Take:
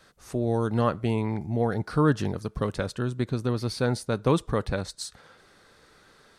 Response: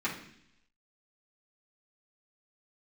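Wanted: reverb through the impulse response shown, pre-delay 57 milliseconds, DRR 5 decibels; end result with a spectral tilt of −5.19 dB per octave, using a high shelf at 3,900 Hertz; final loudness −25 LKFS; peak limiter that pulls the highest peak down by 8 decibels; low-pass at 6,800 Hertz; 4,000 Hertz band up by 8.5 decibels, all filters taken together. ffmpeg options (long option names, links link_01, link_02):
-filter_complex "[0:a]lowpass=6800,highshelf=frequency=3900:gain=4,equalizer=frequency=4000:width_type=o:gain=8,alimiter=limit=-18dB:level=0:latency=1,asplit=2[link_01][link_02];[1:a]atrim=start_sample=2205,adelay=57[link_03];[link_02][link_03]afir=irnorm=-1:irlink=0,volume=-12dB[link_04];[link_01][link_04]amix=inputs=2:normalize=0,volume=3dB"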